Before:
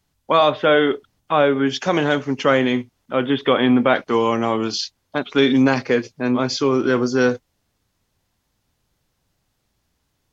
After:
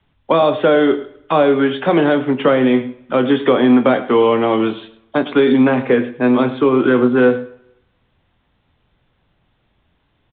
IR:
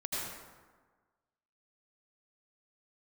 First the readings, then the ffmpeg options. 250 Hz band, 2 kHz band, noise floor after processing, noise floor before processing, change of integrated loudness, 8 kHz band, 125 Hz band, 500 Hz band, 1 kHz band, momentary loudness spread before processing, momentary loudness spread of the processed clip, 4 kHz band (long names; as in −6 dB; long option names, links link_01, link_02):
+5.0 dB, +0.5 dB, −64 dBFS, −71 dBFS, +4.0 dB, can't be measured, +1.5 dB, +4.5 dB, +2.0 dB, 8 LU, 7 LU, −3.0 dB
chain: -filter_complex "[0:a]acrossover=split=160|710|1800[link_01][link_02][link_03][link_04];[link_01]acompressor=threshold=-44dB:ratio=4[link_05];[link_02]acompressor=threshold=-18dB:ratio=4[link_06];[link_03]acompressor=threshold=-31dB:ratio=4[link_07];[link_04]acompressor=threshold=-35dB:ratio=4[link_08];[link_05][link_06][link_07][link_08]amix=inputs=4:normalize=0,acrossover=split=190|1800[link_09][link_10][link_11];[link_11]asoftclip=type=tanh:threshold=-33dB[link_12];[link_09][link_10][link_12]amix=inputs=3:normalize=0,asplit=2[link_13][link_14];[link_14]adelay=24,volume=-11dB[link_15];[link_13][link_15]amix=inputs=2:normalize=0,aecho=1:1:107:0.15,asplit=2[link_16][link_17];[1:a]atrim=start_sample=2205,asetrate=79380,aresample=44100[link_18];[link_17][link_18]afir=irnorm=-1:irlink=0,volume=-15.5dB[link_19];[link_16][link_19]amix=inputs=2:normalize=0,volume=7dB" -ar 8000 -c:a pcm_mulaw